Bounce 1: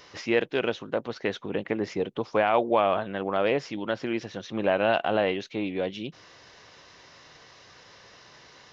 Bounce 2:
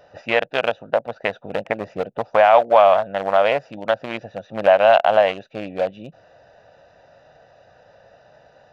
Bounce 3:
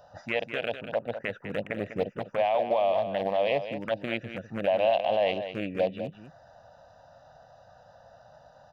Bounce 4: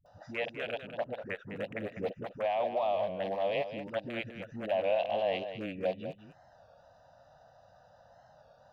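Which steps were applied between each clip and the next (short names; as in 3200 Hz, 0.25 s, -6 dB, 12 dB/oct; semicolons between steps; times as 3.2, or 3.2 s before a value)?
Wiener smoothing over 41 samples; resonant low shelf 480 Hz -9 dB, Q 3; in parallel at +0.5 dB: compressor, threshold -29 dBFS, peak gain reduction 13.5 dB; on the sum: gain +5 dB
limiter -13.5 dBFS, peak gain reduction 11.5 dB; envelope phaser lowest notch 360 Hz, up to 1400 Hz, full sweep at -22 dBFS; echo 0.199 s -10 dB
dispersion highs, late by 60 ms, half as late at 310 Hz; record warp 33 1/3 rpm, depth 100 cents; gain -5.5 dB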